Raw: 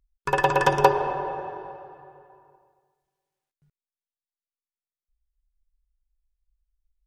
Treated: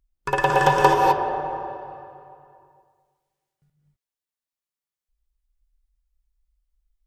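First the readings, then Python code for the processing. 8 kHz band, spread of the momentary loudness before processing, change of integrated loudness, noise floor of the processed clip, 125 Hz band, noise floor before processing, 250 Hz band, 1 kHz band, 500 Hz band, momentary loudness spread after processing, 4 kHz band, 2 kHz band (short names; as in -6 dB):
+3.0 dB, 18 LU, +2.5 dB, under -85 dBFS, +3.0 dB, under -85 dBFS, +3.5 dB, +4.0 dB, +1.5 dB, 18 LU, +3.0 dB, +3.0 dB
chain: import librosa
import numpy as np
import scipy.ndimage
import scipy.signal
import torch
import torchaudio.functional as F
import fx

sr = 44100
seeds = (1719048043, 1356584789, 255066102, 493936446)

y = fx.rev_gated(x, sr, seeds[0], gate_ms=280, shape='rising', drr_db=0.0)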